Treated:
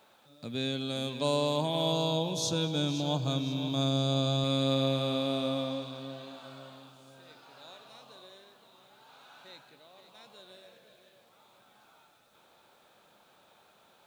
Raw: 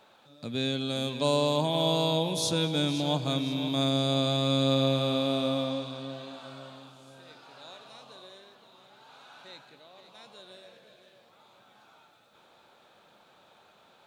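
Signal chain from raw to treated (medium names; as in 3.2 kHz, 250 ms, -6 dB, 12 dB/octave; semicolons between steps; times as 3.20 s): 1.92–4.44 s: graphic EQ with 31 bands 125 Hz +6 dB, 2 kHz -10 dB, 6.3 kHz +5 dB, 10 kHz -11 dB; bit crusher 11-bit; trim -3 dB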